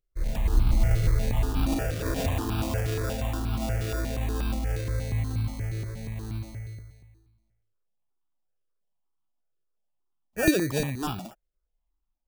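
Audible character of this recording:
aliases and images of a low sample rate 2,100 Hz, jitter 0%
notches that jump at a steady rate 8.4 Hz 240–1,900 Hz

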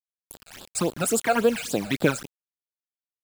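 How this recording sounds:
a quantiser's noise floor 6 bits, dither none
phaser sweep stages 12, 3.6 Hz, lowest notch 310–2,100 Hz

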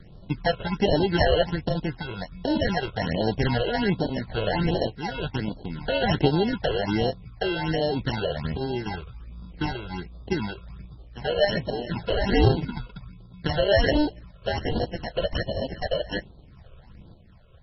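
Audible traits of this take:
sample-and-hold tremolo
aliases and images of a low sample rate 1,200 Hz, jitter 0%
phaser sweep stages 8, 1.3 Hz, lowest notch 240–2,200 Hz
MP3

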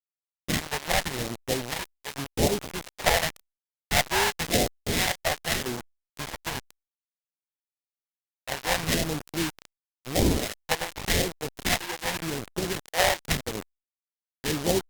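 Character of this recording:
aliases and images of a low sample rate 1,300 Hz, jitter 20%
phaser sweep stages 2, 0.9 Hz, lowest notch 260–1,400 Hz
a quantiser's noise floor 6 bits, dither none
Opus

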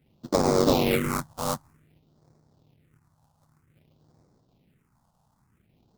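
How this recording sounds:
aliases and images of a low sample rate 1,700 Hz, jitter 20%
phaser sweep stages 4, 0.53 Hz, lowest notch 360–2,800 Hz

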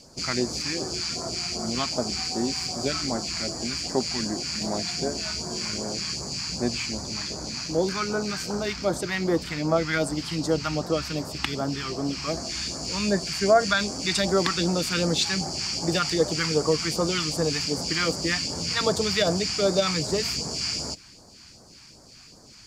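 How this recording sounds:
phaser sweep stages 2, 2.6 Hz, lowest notch 480–2,600 Hz

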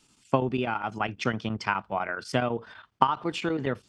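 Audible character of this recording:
chopped level 12 Hz, depth 60%, duty 85%

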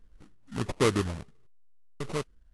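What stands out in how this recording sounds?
phaser sweep stages 8, 1.5 Hz, lowest notch 390–1,800 Hz
sample-and-hold tremolo 3.5 Hz
aliases and images of a low sample rate 1,600 Hz, jitter 20%
AAC

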